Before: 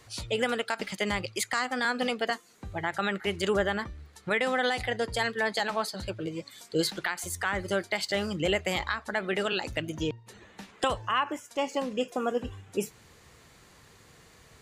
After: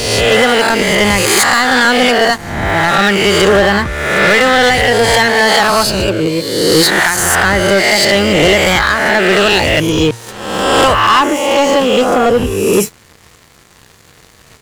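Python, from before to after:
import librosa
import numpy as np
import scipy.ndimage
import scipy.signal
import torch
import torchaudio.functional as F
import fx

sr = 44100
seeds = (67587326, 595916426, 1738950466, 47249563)

y = fx.spec_swells(x, sr, rise_s=1.14)
y = fx.leveller(y, sr, passes=3)
y = y * 10.0 ** (7.5 / 20.0)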